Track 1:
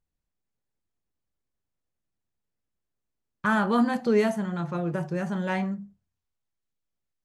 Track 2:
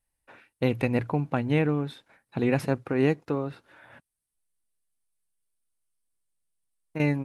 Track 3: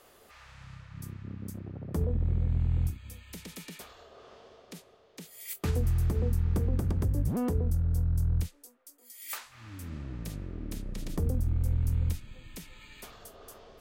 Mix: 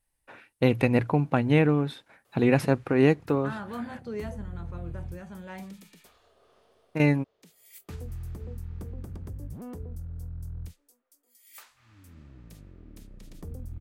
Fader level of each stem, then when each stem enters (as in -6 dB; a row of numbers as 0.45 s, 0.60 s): -13.5 dB, +3.0 dB, -10.5 dB; 0.00 s, 0.00 s, 2.25 s